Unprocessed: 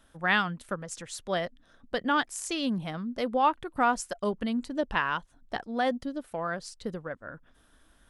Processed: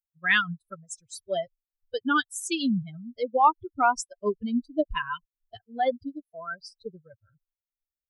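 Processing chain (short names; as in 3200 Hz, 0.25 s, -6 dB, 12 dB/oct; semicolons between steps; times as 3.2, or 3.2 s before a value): per-bin expansion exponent 3; 3.75–4.46 low-pass opened by the level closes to 810 Hz, open at -27 dBFS; gain +7.5 dB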